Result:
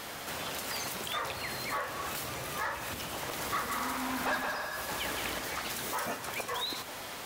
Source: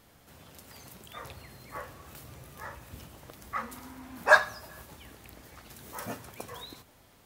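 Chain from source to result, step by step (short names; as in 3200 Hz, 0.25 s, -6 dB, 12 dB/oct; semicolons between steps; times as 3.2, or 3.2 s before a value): compressor 6:1, threshold -49 dBFS, peak gain reduction 32.5 dB; overdrive pedal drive 20 dB, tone 7000 Hz, clips at -31.5 dBFS; 3.14–5.39 bouncing-ball echo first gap 0.17 s, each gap 0.6×, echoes 5; gain +8 dB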